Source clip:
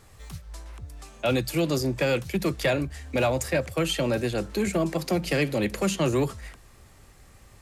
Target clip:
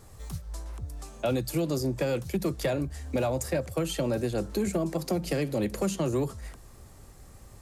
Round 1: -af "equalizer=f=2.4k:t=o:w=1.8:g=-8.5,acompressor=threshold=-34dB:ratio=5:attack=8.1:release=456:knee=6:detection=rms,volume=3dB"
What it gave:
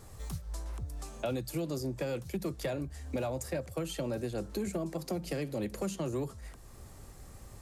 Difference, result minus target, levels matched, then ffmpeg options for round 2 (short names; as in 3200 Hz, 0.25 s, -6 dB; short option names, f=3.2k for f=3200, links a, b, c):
compressor: peak gain reduction +7 dB
-af "equalizer=f=2.4k:t=o:w=1.8:g=-8.5,acompressor=threshold=-25.5dB:ratio=5:attack=8.1:release=456:knee=6:detection=rms,volume=3dB"